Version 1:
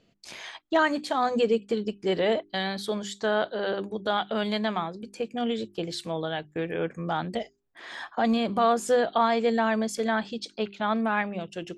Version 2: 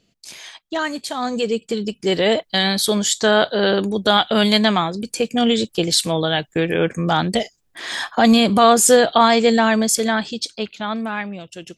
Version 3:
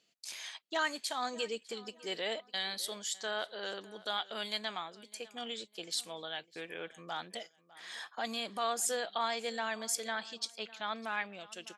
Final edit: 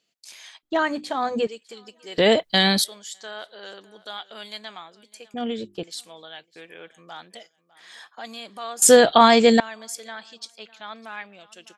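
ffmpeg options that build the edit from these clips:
-filter_complex "[0:a]asplit=2[s0][s1];[1:a]asplit=2[s2][s3];[2:a]asplit=5[s4][s5][s6][s7][s8];[s4]atrim=end=0.632[s9];[s0]atrim=start=0.628:end=1.472[s10];[s5]atrim=start=1.468:end=2.182[s11];[s2]atrim=start=2.178:end=2.842[s12];[s6]atrim=start=2.838:end=5.342[s13];[s1]atrim=start=5.338:end=5.832[s14];[s7]atrim=start=5.828:end=8.822[s15];[s3]atrim=start=8.818:end=9.602[s16];[s8]atrim=start=9.598[s17];[s9][s10]acrossfade=d=0.004:c1=hsin:c2=hsin[s18];[s18][s11]acrossfade=d=0.004:c1=hsin:c2=hsin[s19];[s19][s12]acrossfade=d=0.004:c1=hsin:c2=hsin[s20];[s20][s13]acrossfade=d=0.004:c1=hsin:c2=hsin[s21];[s21][s14]acrossfade=d=0.004:c1=hsin:c2=hsin[s22];[s22][s15]acrossfade=d=0.004:c1=hsin:c2=hsin[s23];[s23][s16]acrossfade=d=0.004:c1=hsin:c2=hsin[s24];[s24][s17]acrossfade=d=0.004:c1=hsin:c2=hsin"

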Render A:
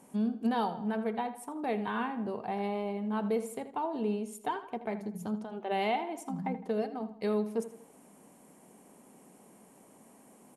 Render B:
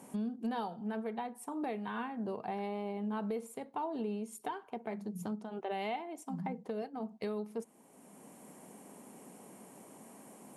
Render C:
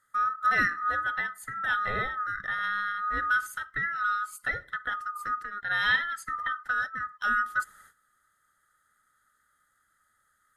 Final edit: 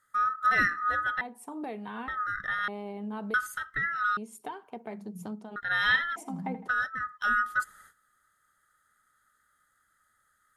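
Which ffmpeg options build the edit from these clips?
-filter_complex "[1:a]asplit=3[s0][s1][s2];[2:a]asplit=5[s3][s4][s5][s6][s7];[s3]atrim=end=1.212[s8];[s0]atrim=start=1.208:end=2.082[s9];[s4]atrim=start=2.078:end=2.682[s10];[s1]atrim=start=2.678:end=3.342[s11];[s5]atrim=start=3.338:end=4.172[s12];[s2]atrim=start=4.168:end=5.562[s13];[s6]atrim=start=5.558:end=6.162[s14];[0:a]atrim=start=6.158:end=6.682[s15];[s7]atrim=start=6.678[s16];[s8][s9]acrossfade=d=0.004:c1=hsin:c2=hsin[s17];[s17][s10]acrossfade=d=0.004:c1=hsin:c2=hsin[s18];[s18][s11]acrossfade=d=0.004:c1=hsin:c2=hsin[s19];[s19][s12]acrossfade=d=0.004:c1=hsin:c2=hsin[s20];[s20][s13]acrossfade=d=0.004:c1=hsin:c2=hsin[s21];[s21][s14]acrossfade=d=0.004:c1=hsin:c2=hsin[s22];[s22][s15]acrossfade=d=0.004:c1=hsin:c2=hsin[s23];[s23][s16]acrossfade=d=0.004:c1=hsin:c2=hsin"

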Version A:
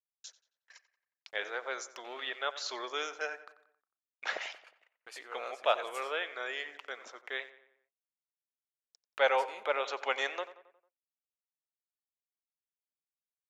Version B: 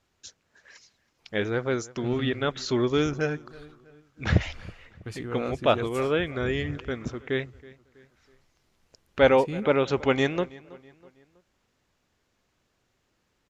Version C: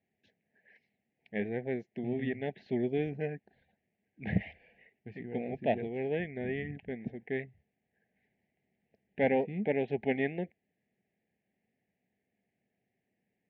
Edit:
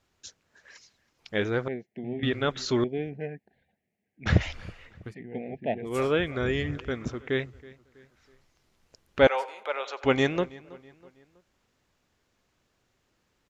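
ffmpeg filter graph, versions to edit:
-filter_complex "[2:a]asplit=3[s0][s1][s2];[1:a]asplit=5[s3][s4][s5][s6][s7];[s3]atrim=end=1.682[s8];[s0]atrim=start=1.678:end=2.232[s9];[s4]atrim=start=2.228:end=2.842[s10];[s1]atrim=start=2.838:end=4.262[s11];[s5]atrim=start=4.258:end=5.15[s12];[s2]atrim=start=5.05:end=5.94[s13];[s6]atrim=start=5.84:end=9.272[s14];[0:a]atrim=start=9.268:end=10.042[s15];[s7]atrim=start=10.038[s16];[s8][s9]acrossfade=d=0.004:c1=hsin:c2=hsin[s17];[s17][s10]acrossfade=d=0.004:c1=hsin:c2=hsin[s18];[s18][s11]acrossfade=d=0.004:c1=hsin:c2=hsin[s19];[s19][s12]acrossfade=d=0.004:c1=hsin:c2=hsin[s20];[s20][s13]acrossfade=d=0.1:c1=tri:c2=tri[s21];[s21][s14]acrossfade=d=0.1:c1=tri:c2=tri[s22];[s22][s15]acrossfade=d=0.004:c1=hsin:c2=hsin[s23];[s23][s16]acrossfade=d=0.004:c1=hsin:c2=hsin"

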